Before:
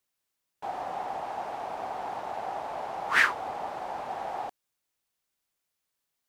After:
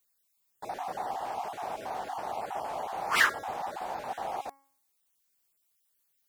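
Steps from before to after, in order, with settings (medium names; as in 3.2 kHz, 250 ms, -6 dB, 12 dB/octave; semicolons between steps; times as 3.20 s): random holes in the spectrogram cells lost 21%; treble shelf 7.1 kHz +12 dB; de-hum 274.6 Hz, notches 8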